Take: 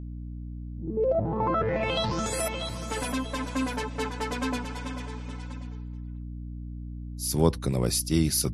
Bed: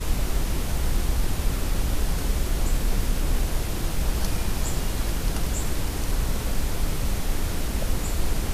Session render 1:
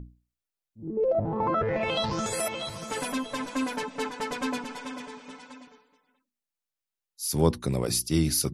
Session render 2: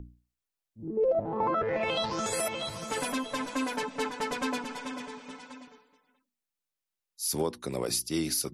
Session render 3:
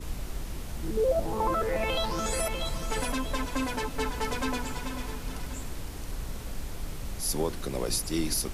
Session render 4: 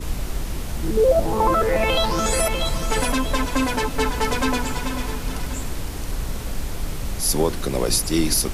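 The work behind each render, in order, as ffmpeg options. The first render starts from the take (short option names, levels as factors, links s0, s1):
-af "bandreject=f=60:t=h:w=6,bandreject=f=120:t=h:w=6,bandreject=f=180:t=h:w=6,bandreject=f=240:t=h:w=6,bandreject=f=300:t=h:w=6,bandreject=f=360:t=h:w=6"
-filter_complex "[0:a]acrossover=split=250|3000[s0][s1][s2];[s0]acompressor=threshold=0.00794:ratio=6[s3];[s3][s1][s2]amix=inputs=3:normalize=0,alimiter=limit=0.119:level=0:latency=1:release=338"
-filter_complex "[1:a]volume=0.282[s0];[0:a][s0]amix=inputs=2:normalize=0"
-af "volume=2.82"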